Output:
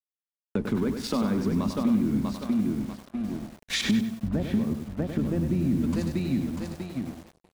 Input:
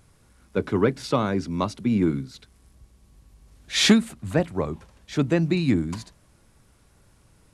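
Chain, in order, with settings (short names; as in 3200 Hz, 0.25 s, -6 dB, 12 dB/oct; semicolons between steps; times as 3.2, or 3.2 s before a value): octaver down 1 oct, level -5 dB; gate -49 dBFS, range -6 dB; feedback echo 0.643 s, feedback 27%, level -10 dB; sample leveller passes 1; 3.81–5.81 tape spacing loss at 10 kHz 43 dB; limiter -15 dBFS, peak gain reduction 10 dB; bell 220 Hz +13.5 dB 0.57 oct; crossover distortion -47 dBFS; compressor 3:1, threshold -32 dBFS, peak gain reduction 17.5 dB; lo-fi delay 98 ms, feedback 35%, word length 8-bit, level -6.5 dB; gain +4 dB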